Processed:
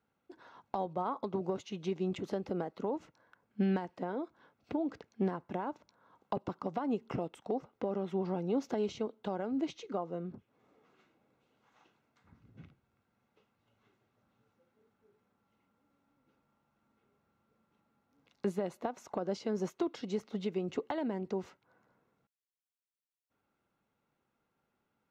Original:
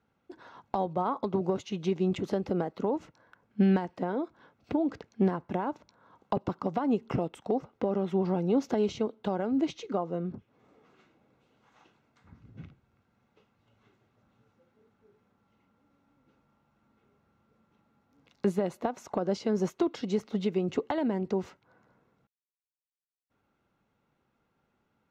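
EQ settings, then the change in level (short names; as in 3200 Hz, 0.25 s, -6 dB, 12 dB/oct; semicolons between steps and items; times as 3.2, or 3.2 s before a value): low shelf 170 Hz -5 dB; -5.0 dB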